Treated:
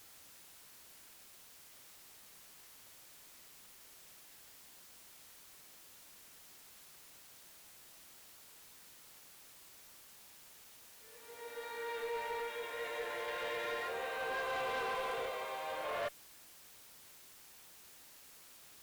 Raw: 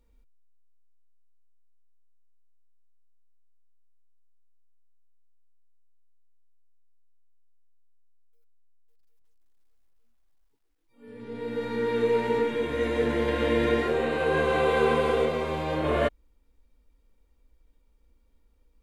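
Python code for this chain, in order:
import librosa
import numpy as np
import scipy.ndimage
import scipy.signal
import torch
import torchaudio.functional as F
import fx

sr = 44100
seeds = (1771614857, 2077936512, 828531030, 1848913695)

y = scipy.signal.sosfilt(scipy.signal.butter(4, 580.0, 'highpass', fs=sr, output='sos'), x)
y = fx.dmg_noise_colour(y, sr, seeds[0], colour='white', level_db=-51.0)
y = fx.tube_stage(y, sr, drive_db=26.0, bias=0.2)
y = y * 10.0 ** (-6.5 / 20.0)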